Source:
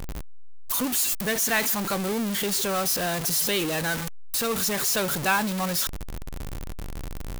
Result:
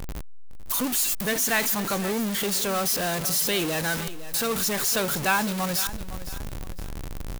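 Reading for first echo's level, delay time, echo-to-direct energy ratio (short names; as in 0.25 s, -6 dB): -14.5 dB, 0.509 s, -14.0 dB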